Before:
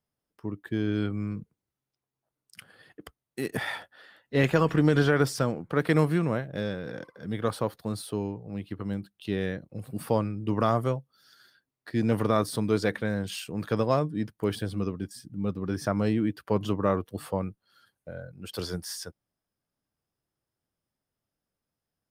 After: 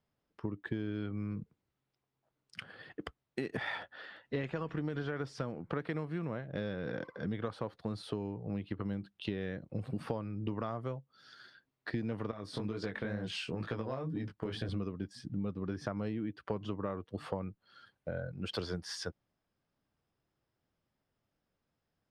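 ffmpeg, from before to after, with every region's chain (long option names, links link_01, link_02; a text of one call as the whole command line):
ffmpeg -i in.wav -filter_complex "[0:a]asettb=1/sr,asplit=3[link_01][link_02][link_03];[link_01]atrim=end=12.314[link_04];[link_02]atrim=start=12.31:end=14.69,asetpts=PTS-STARTPTS,afade=type=in:duration=0.004:curve=qsin,afade=type=out:start_time=2.376:duration=0.004:curve=qsin,acompressor=threshold=-27dB:ratio=6:attack=3.2:release=140:knee=1:detection=peak,flanger=delay=16.5:depth=6.6:speed=2.1[link_05];[link_03]atrim=start=14.686[link_06];[link_04][link_05]acrossfade=duration=0.004:curve1=hsin:curve2=qsin[link_07];[link_07][link_06]acrossfade=duration=0.004:curve1=qsin:curve2=hsin,lowpass=4000,acompressor=threshold=-37dB:ratio=12,volume=4dB" out.wav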